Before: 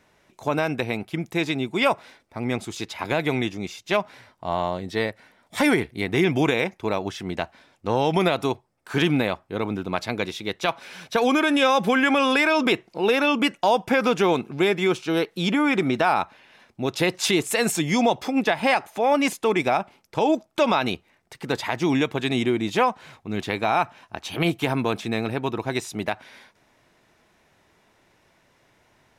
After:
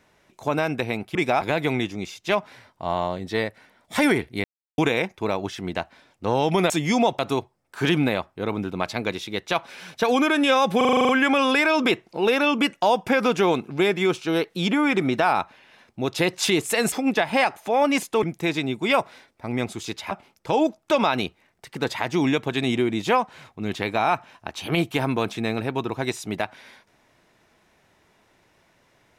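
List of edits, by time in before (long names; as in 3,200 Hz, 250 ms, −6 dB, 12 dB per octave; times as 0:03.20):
0:01.15–0:03.03: swap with 0:19.53–0:19.79
0:06.06–0:06.40: silence
0:11.90: stutter 0.04 s, 9 plays
0:17.73–0:18.22: move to 0:08.32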